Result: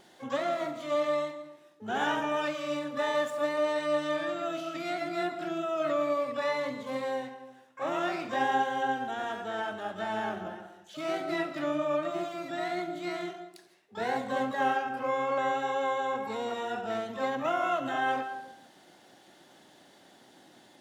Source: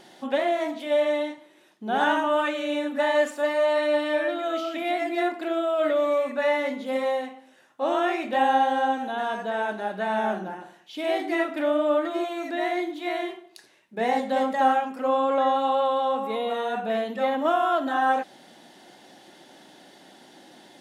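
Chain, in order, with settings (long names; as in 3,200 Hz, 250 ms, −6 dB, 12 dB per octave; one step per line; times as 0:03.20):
comb and all-pass reverb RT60 0.79 s, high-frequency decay 0.3×, pre-delay 110 ms, DRR 12 dB
pitch-shifted copies added −12 semitones −14 dB, +12 semitones −9 dB
level −7.5 dB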